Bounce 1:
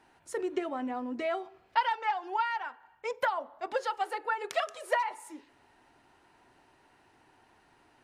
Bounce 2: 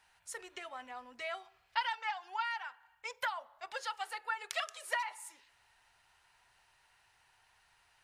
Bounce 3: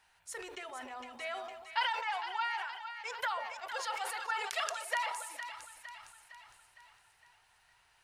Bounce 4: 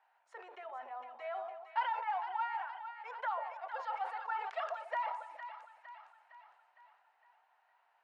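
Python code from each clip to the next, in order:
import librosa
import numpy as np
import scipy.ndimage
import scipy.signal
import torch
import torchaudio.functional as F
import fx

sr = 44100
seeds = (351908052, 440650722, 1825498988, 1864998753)

y1 = fx.tone_stack(x, sr, knobs='10-0-10')
y1 = y1 * 10.0 ** (2.5 / 20.0)
y2 = fx.echo_split(y1, sr, split_hz=890.0, low_ms=141, high_ms=459, feedback_pct=52, wet_db=-9.0)
y2 = fx.sustainer(y2, sr, db_per_s=44.0)
y3 = fx.ladder_bandpass(y2, sr, hz=860.0, resonance_pct=40)
y3 = y3 * 10.0 ** (9.0 / 20.0)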